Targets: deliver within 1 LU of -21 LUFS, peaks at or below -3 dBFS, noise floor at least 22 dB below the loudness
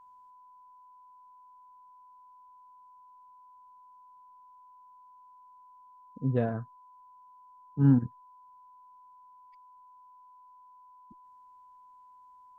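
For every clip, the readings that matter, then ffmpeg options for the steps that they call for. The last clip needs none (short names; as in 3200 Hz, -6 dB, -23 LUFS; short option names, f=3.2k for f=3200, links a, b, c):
steady tone 1000 Hz; tone level -53 dBFS; loudness -28.5 LUFS; peak -11.5 dBFS; loudness target -21.0 LUFS
-> -af "bandreject=f=1k:w=30"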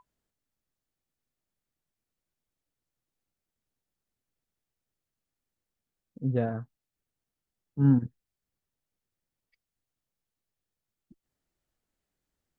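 steady tone none; loudness -27.5 LUFS; peak -11.5 dBFS; loudness target -21.0 LUFS
-> -af "volume=6.5dB"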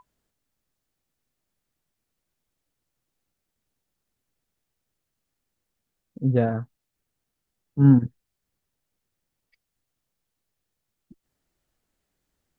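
loudness -21.0 LUFS; peak -5.0 dBFS; noise floor -82 dBFS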